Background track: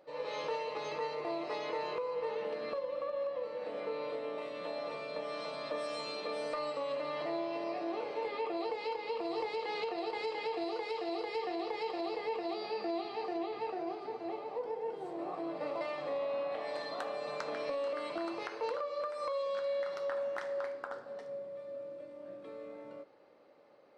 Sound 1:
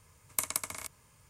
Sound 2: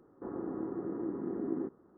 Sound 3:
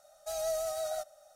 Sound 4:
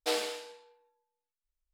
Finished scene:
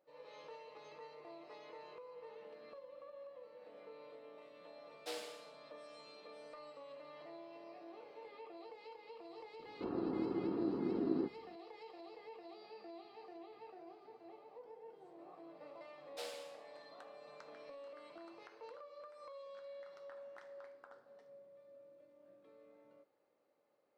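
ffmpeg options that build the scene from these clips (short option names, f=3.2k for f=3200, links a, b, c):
-filter_complex "[4:a]asplit=2[a][b];[0:a]volume=-16.5dB[c];[b]acrossover=split=290[d][e];[e]adelay=40[f];[d][f]amix=inputs=2:normalize=0[g];[a]atrim=end=1.73,asetpts=PTS-STARTPTS,volume=-14dB,afade=t=in:d=0.004:c=hsin,afade=t=out:st=1.726:d=0.004:c=hsin,adelay=5000[h];[2:a]atrim=end=1.97,asetpts=PTS-STARTPTS,volume=-0.5dB,afade=t=in:d=0.004:c=hsin,afade=t=out:st=1.966:d=0.004:c=hsin,adelay=9590[i];[g]atrim=end=1.73,asetpts=PTS-STARTPTS,volume=-15.5dB,afade=t=in:d=0.004:c=hsin,afade=t=out:st=1.726:d=0.004:c=hsin,adelay=16070[j];[c][h][i][j]amix=inputs=4:normalize=0"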